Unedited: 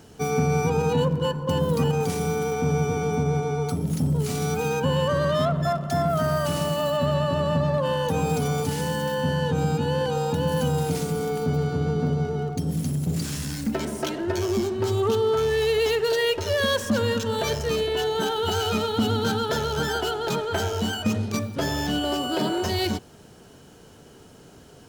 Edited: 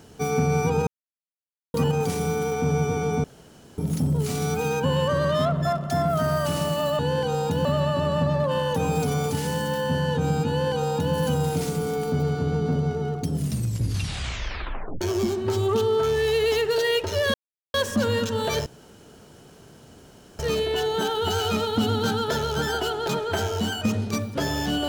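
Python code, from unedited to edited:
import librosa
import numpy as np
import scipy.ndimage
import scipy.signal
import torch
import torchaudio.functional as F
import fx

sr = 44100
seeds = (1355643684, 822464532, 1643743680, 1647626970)

y = fx.edit(x, sr, fx.silence(start_s=0.87, length_s=0.87),
    fx.room_tone_fill(start_s=3.24, length_s=0.54),
    fx.duplicate(start_s=9.82, length_s=0.66, to_s=6.99),
    fx.tape_stop(start_s=12.64, length_s=1.71),
    fx.insert_silence(at_s=16.68, length_s=0.4),
    fx.insert_room_tone(at_s=17.6, length_s=1.73), tone=tone)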